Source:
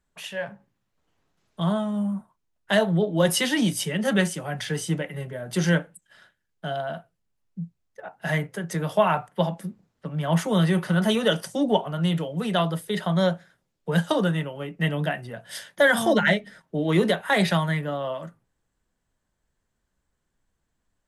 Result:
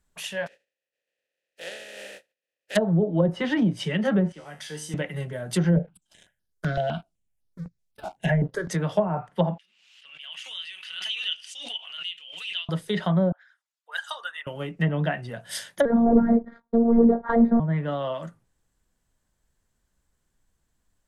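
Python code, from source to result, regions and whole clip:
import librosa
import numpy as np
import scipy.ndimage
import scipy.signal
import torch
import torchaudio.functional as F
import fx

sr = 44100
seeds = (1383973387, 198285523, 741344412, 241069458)

y = fx.spec_flatten(x, sr, power=0.18, at=(0.46, 2.75), fade=0.02)
y = fx.vowel_filter(y, sr, vowel='e', at=(0.46, 2.75), fade=0.02)
y = fx.chain(y, sr, fx.peak_eq(hz=120.0, db=-12.0, octaves=1.1),
    fx.comb_fb(f0_hz=76.0, decay_s=0.52, harmonics='all', damping=0.0, mix_pct=80), at=(4.32, 4.94))
y = fx.chain(y, sr, fx.leveller(passes=2),
    fx.peak_eq(hz=1100.0, db=-5.0, octaves=0.89),
    fx.phaser_held(hz=7.9, low_hz=300.0, high_hz=7500.0), at=(5.76, 8.68))
y = fx.chain(y, sr, fx.ladder_bandpass(hz=3000.0, resonance_pct=75),
    fx.pre_swell(db_per_s=51.0), at=(9.58, 12.69))
y = fx.chain(y, sr, fx.envelope_sharpen(power=1.5),
    fx.highpass(hz=1100.0, slope=24), at=(13.32, 14.47))
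y = fx.chain(y, sr, fx.leveller(passes=3),
    fx.robotise(hz=232.0),
    fx.moving_average(points=16), at=(15.85, 17.6))
y = fx.low_shelf(y, sr, hz=110.0, db=5.0)
y = fx.env_lowpass_down(y, sr, base_hz=500.0, full_db=-15.5)
y = fx.high_shelf(y, sr, hz=4700.0, db=7.5)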